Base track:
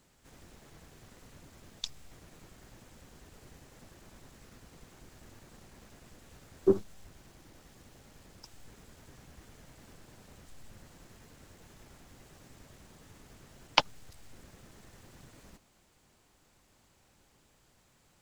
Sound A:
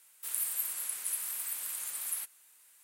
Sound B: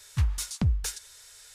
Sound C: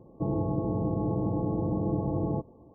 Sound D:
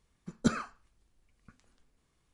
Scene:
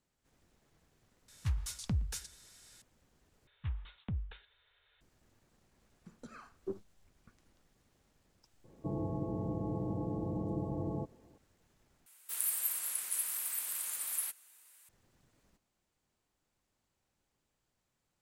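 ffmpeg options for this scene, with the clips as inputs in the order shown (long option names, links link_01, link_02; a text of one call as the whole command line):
ffmpeg -i bed.wav -i cue0.wav -i cue1.wav -i cue2.wav -i cue3.wav -filter_complex "[2:a]asplit=2[link_01][link_02];[0:a]volume=-16dB[link_03];[link_01]asplit=2[link_04][link_05];[link_05]adelay=117,lowpass=frequency=2000:poles=1,volume=-20dB,asplit=2[link_06][link_07];[link_07]adelay=117,lowpass=frequency=2000:poles=1,volume=0.34,asplit=2[link_08][link_09];[link_09]adelay=117,lowpass=frequency=2000:poles=1,volume=0.34[link_10];[link_04][link_06][link_08][link_10]amix=inputs=4:normalize=0[link_11];[link_02]aresample=8000,aresample=44100[link_12];[4:a]acompressor=threshold=-42dB:ratio=6:attack=3.2:release=140:knee=1:detection=peak[link_13];[1:a]highpass=52[link_14];[link_03]asplit=3[link_15][link_16][link_17];[link_15]atrim=end=3.474[link_18];[link_12]atrim=end=1.54,asetpts=PTS-STARTPTS,volume=-13dB[link_19];[link_16]atrim=start=5.006:end=12.064[link_20];[link_14]atrim=end=2.83,asetpts=PTS-STARTPTS,volume=-0.5dB[link_21];[link_17]atrim=start=14.886[link_22];[link_11]atrim=end=1.54,asetpts=PTS-STARTPTS,volume=-8.5dB,afade=type=in:duration=0.004:curve=hsin,afade=type=out:start_time=1.536:duration=0.004:curve=hsin,adelay=1280[link_23];[link_13]atrim=end=2.33,asetpts=PTS-STARTPTS,volume=-5.5dB,afade=type=in:duration=0.004:curve=hsin,afade=type=out:start_time=2.326:duration=0.004:curve=hsin,adelay=5790[link_24];[3:a]atrim=end=2.74,asetpts=PTS-STARTPTS,volume=-8dB,afade=type=in:duration=0.004:curve=hsin,afade=type=out:start_time=2.736:duration=0.004:curve=hsin,adelay=8640[link_25];[link_18][link_19]acrossfade=duration=0.004:curve1=hsin:curve2=hsin[link_26];[link_26][link_20]acrossfade=duration=0.004:curve1=hsin:curve2=hsin[link_27];[link_27][link_21]acrossfade=duration=0.004:curve1=hsin:curve2=hsin[link_28];[link_28][link_22]acrossfade=duration=0.004:curve1=hsin:curve2=hsin[link_29];[link_29][link_23][link_24][link_25]amix=inputs=4:normalize=0" out.wav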